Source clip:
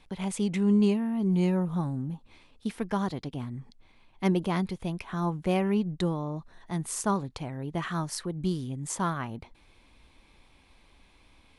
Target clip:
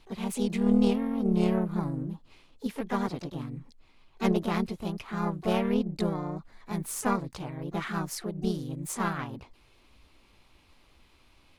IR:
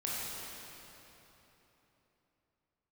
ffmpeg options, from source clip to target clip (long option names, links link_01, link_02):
-filter_complex "[0:a]asplit=3[link_01][link_02][link_03];[link_02]asetrate=52444,aresample=44100,atempo=0.840896,volume=-1dB[link_04];[link_03]asetrate=88200,aresample=44100,atempo=0.5,volume=-15dB[link_05];[link_01][link_04][link_05]amix=inputs=3:normalize=0,aeval=exprs='0.355*(cos(1*acos(clip(val(0)/0.355,-1,1)))-cos(1*PI/2))+0.0282*(cos(3*acos(clip(val(0)/0.355,-1,1)))-cos(3*PI/2))+0.0178*(cos(4*acos(clip(val(0)/0.355,-1,1)))-cos(4*PI/2))':channel_layout=same,volume=-1.5dB"